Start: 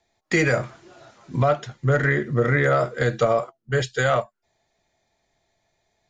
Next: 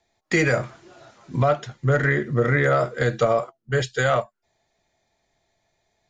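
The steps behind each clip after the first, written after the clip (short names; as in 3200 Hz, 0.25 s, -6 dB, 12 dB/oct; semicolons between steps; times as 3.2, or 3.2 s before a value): nothing audible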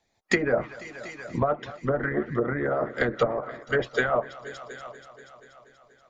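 multi-head echo 0.24 s, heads all three, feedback 44%, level -21 dB; treble ducked by the level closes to 940 Hz, closed at -15.5 dBFS; harmonic-percussive split harmonic -17 dB; gain +3.5 dB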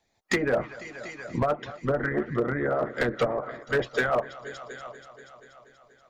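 overloaded stage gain 17.5 dB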